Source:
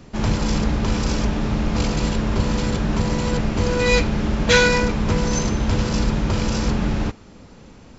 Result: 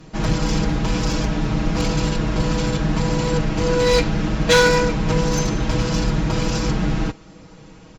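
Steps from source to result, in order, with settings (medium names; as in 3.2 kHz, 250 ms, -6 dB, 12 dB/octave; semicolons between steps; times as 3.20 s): one-sided clip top -15 dBFS; comb 6.3 ms, depth 90%; trim -1 dB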